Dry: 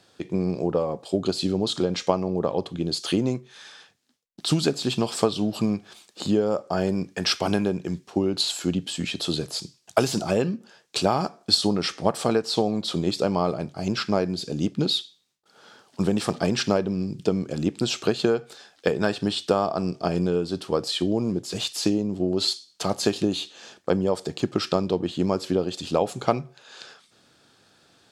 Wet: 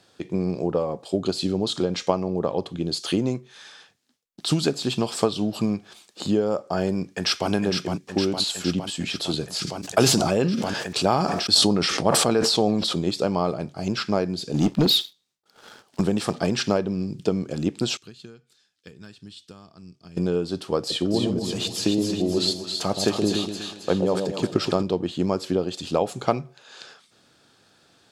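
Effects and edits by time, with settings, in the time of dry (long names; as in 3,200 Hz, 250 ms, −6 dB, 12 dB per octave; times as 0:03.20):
0:07.01–0:07.51: delay throw 460 ms, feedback 75%, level −5.5 dB
0:09.56–0:12.97: level that may fall only so fast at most 24 dB per second
0:14.54–0:16.01: leveller curve on the samples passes 2
0:17.97–0:20.17: guitar amp tone stack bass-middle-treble 6-0-2
0:20.78–0:24.83: echo with a time of its own for lows and highs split 820 Hz, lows 122 ms, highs 270 ms, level −5 dB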